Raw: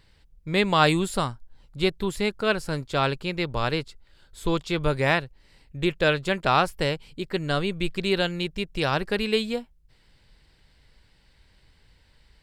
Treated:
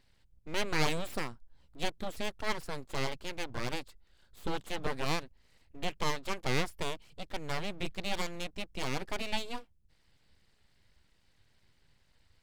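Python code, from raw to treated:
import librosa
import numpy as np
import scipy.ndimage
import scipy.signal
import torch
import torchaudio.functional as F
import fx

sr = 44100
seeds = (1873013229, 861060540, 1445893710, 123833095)

y = np.abs(x)
y = fx.wow_flutter(y, sr, seeds[0], rate_hz=2.1, depth_cents=22.0)
y = F.gain(torch.from_numpy(y), -8.0).numpy()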